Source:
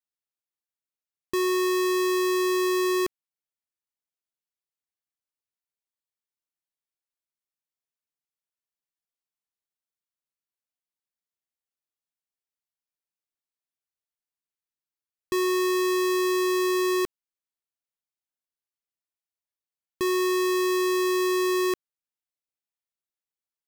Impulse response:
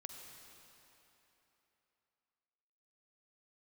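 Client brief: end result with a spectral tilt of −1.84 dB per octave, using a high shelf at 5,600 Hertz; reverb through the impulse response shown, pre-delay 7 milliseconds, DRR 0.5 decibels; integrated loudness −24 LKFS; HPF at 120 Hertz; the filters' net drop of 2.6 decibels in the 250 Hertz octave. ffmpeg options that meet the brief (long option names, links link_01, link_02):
-filter_complex "[0:a]highpass=120,equalizer=frequency=250:width_type=o:gain=-5.5,highshelf=frequency=5600:gain=-8,asplit=2[link_01][link_02];[1:a]atrim=start_sample=2205,adelay=7[link_03];[link_02][link_03]afir=irnorm=-1:irlink=0,volume=3.5dB[link_04];[link_01][link_04]amix=inputs=2:normalize=0,volume=2.5dB"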